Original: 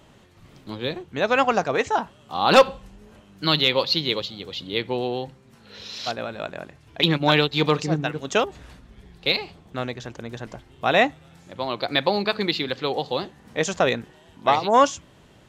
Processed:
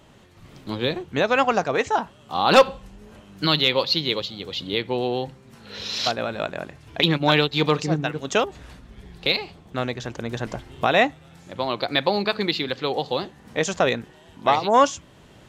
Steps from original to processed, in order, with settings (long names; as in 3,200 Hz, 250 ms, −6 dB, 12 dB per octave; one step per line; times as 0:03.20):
camcorder AGC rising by 6.4 dB per second